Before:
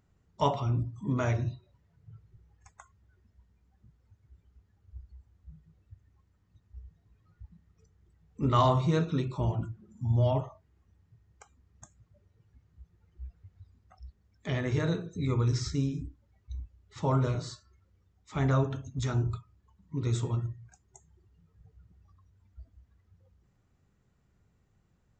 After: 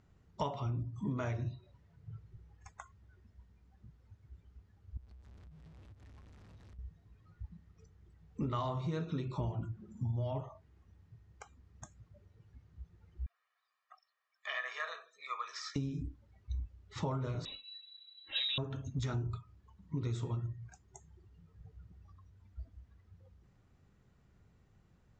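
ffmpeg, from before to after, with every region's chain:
ffmpeg -i in.wav -filter_complex "[0:a]asettb=1/sr,asplit=3[link_01][link_02][link_03];[link_01]atrim=end=4.974[link_04];[link_02]atrim=start=4.97:end=6.79,asetpts=PTS-STARTPTS,afade=type=in:duration=0.004:curve=qsin,afade=type=out:start_time=1.816:duration=0.004:curve=qsin,aeval=exprs='val(0)+0.5*0.0015*sgn(val(0))':channel_layout=same,acompressor=threshold=-55dB:ratio=16:attack=3.2:release=140:knee=1:detection=peak[link_05];[link_03]atrim=start=6.786[link_06];[link_04][link_05]acrossfade=duration=0.004:curve1=hsin:curve2=qsin[link_07];[link_07][link_06]acrossfade=duration=0.004:curve1=qsin:curve2=hsin,asettb=1/sr,asplit=3[link_08][link_09][link_10];[link_08]atrim=end=13.264[link_11];[link_09]atrim=start=13.26:end=15.76,asetpts=PTS-STARTPTS,afade=type=in:duration=0.004:curve=qsin,afade=type=out:start_time=2.496:duration=0.004:curve=qsin,highpass=frequency=970:width=0.5412,highpass=frequency=970:width=1.3066,aemphasis=mode=reproduction:type=75kf,aecho=1:1:1.7:0.72,atrim=end_sample=110250[link_12];[link_10]atrim=start=15.756[link_13];[link_11][link_12]acrossfade=duration=0.004:curve1=hsin:curve2=qsin[link_14];[link_14][link_13]acrossfade=duration=0.004:curve1=qsin:curve2=hsin,asettb=1/sr,asplit=3[link_15][link_16][link_17];[link_15]atrim=end=17.454[link_18];[link_16]atrim=start=17.45:end=18.58,asetpts=PTS-STARTPTS,afade=type=in:duration=0.004:curve=qsin,afade=type=out:start_time=1.126:duration=0.004:curve=qsin,equalizer=frequency=77:width=1.2:gain=9.5,aecho=1:1:3.8:0.77,atrim=end_sample=49833,lowpass=frequency=3400:width_type=q:width=0.5098,lowpass=frequency=3400:width_type=q:width=0.6013,lowpass=frequency=3400:width_type=q:width=0.9,lowpass=frequency=3400:width_type=q:width=2.563,afreqshift=-4000[link_19];[link_17]atrim=start=18.576[link_20];[link_18][link_19]acrossfade=duration=0.004:curve1=hsin:curve2=qsin[link_21];[link_21][link_20]acrossfade=duration=0.004:curve1=qsin:curve2=hsin,lowpass=6200,acompressor=threshold=-36dB:ratio=10,volume=3dB" out.wav

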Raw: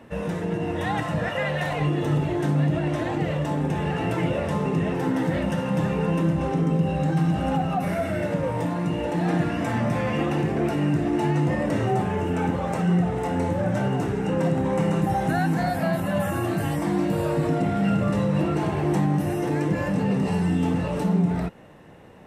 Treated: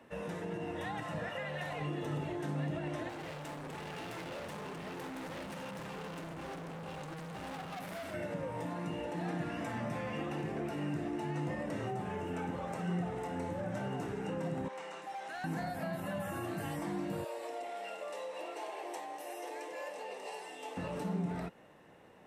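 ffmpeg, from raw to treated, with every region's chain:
ffmpeg -i in.wav -filter_complex "[0:a]asettb=1/sr,asplit=3[link_01][link_02][link_03];[link_01]atrim=end=3.094[link_04];[link_02]atrim=start=3.09:end=8.14,asetpts=PTS-STARTPTS,afade=type=in:duration=0.004:curve=qsin,afade=type=out:start_time=5.046:duration=0.004:curve=qsin,asoftclip=type=hard:threshold=-30.5dB,highshelf=frequency=6200:gain=5.5[link_05];[link_03]atrim=start=8.136[link_06];[link_04][link_05]acrossfade=duration=0.004:curve1=hsin:curve2=qsin[link_07];[link_07][link_06]acrossfade=duration=0.004:curve1=qsin:curve2=hsin,asettb=1/sr,asplit=3[link_08][link_09][link_10];[link_08]atrim=end=14.684[link_11];[link_09]atrim=start=14.68:end=15.44,asetpts=PTS-STARTPTS,afade=type=in:duration=0.004:curve=qsin,afade=type=out:start_time=0.756:duration=0.004:curve=qsin,highpass=790,lowpass=6300,equalizer=frequency=1300:width_type=o:width=2.2:gain=-4,asoftclip=type=hard:threshold=-29dB[link_12];[link_10]atrim=start=15.436[link_13];[link_11][link_12]acrossfade=duration=0.004:curve1=hsin:curve2=qsin[link_14];[link_14][link_13]acrossfade=duration=0.004:curve1=qsin:curve2=hsin,asettb=1/sr,asplit=3[link_15][link_16][link_17];[link_15]atrim=end=17.244[link_18];[link_16]atrim=start=17.24:end=20.77,asetpts=PTS-STARTPTS,afade=type=in:duration=0.004:curve=qsin,afade=type=out:start_time=3.526:duration=0.004:curve=qsin,highpass=frequency=490:width=0.5412,highpass=frequency=490:width=1.3066,equalizer=frequency=1400:width=2.2:gain=-9.5[link_19];[link_17]atrim=start=20.766[link_20];[link_18][link_19]acrossfade=duration=0.004:curve1=hsin:curve2=qsin[link_21];[link_21][link_20]acrossfade=duration=0.004:curve1=qsin:curve2=hsin,lowshelf=frequency=200:gain=-11,acrossover=split=230[link_22][link_23];[link_23]acompressor=threshold=-29dB:ratio=6[link_24];[link_22][link_24]amix=inputs=2:normalize=0,volume=-8dB" out.wav

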